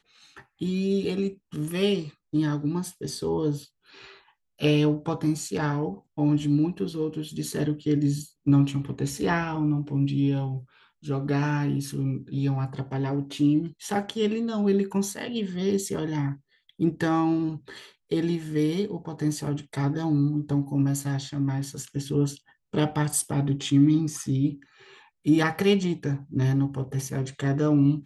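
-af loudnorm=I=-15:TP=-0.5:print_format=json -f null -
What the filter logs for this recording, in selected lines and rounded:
"input_i" : "-26.2",
"input_tp" : "-9.9",
"input_lra" : "3.3",
"input_thresh" : "-36.5",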